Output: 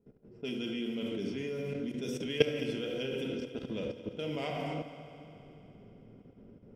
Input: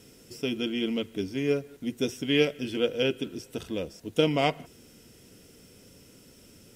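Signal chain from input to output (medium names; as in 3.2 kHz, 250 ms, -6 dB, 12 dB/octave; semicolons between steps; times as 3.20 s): simulated room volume 1800 m³, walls mixed, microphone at 1.3 m; level-controlled noise filter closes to 630 Hz, open at -23 dBFS; level held to a coarse grid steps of 18 dB; on a send: multi-head delay 71 ms, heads first and third, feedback 74%, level -16.5 dB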